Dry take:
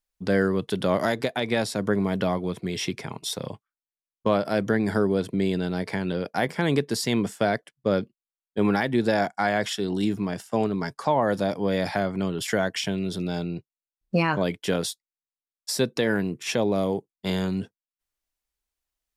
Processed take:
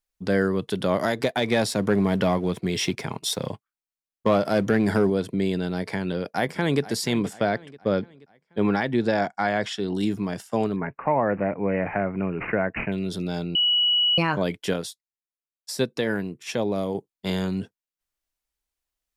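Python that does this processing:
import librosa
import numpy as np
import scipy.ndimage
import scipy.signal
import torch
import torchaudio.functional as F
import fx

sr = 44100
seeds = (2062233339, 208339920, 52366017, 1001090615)

y = fx.leveller(x, sr, passes=1, at=(1.21, 5.1))
y = fx.echo_throw(y, sr, start_s=6.07, length_s=0.74, ms=480, feedback_pct=50, wet_db=-16.5)
y = fx.air_absorb(y, sr, metres=65.0, at=(7.33, 9.95))
y = fx.resample_bad(y, sr, factor=8, down='none', up='filtered', at=(10.76, 12.92))
y = fx.upward_expand(y, sr, threshold_db=-33.0, expansion=1.5, at=(14.73, 16.95))
y = fx.edit(y, sr, fx.bleep(start_s=13.55, length_s=0.63, hz=2930.0, db=-17.5), tone=tone)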